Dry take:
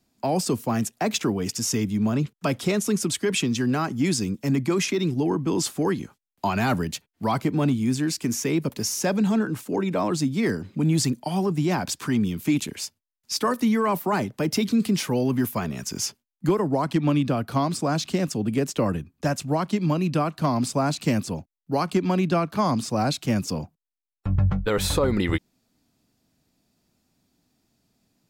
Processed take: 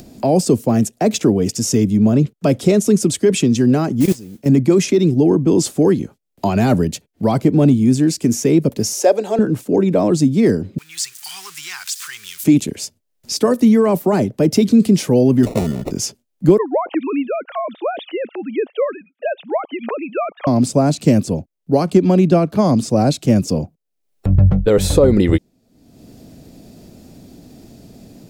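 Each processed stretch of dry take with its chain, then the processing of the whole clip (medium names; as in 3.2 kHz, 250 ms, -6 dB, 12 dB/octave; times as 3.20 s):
4.00–4.46 s: level held to a coarse grid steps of 22 dB + modulation noise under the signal 11 dB
8.93–9.39 s: high-pass 380 Hz 24 dB/octave + peaking EQ 670 Hz +5 dB 0.95 oct
10.78–12.44 s: zero-crossing glitches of -28.5 dBFS + inverse Chebyshev high-pass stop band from 650 Hz + treble shelf 8.9 kHz -7.5 dB
15.43–15.91 s: peaking EQ 3.6 kHz -5.5 dB 1.7 oct + sample-rate reducer 1.6 kHz
16.58–20.47 s: formants replaced by sine waves + high-pass 620 Hz + treble shelf 2.8 kHz +10.5 dB
whole clip: resonant low shelf 760 Hz +8.5 dB, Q 1.5; upward compressor, threshold -25 dBFS; dynamic bell 7.6 kHz, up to +5 dB, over -43 dBFS, Q 0.94; trim +1 dB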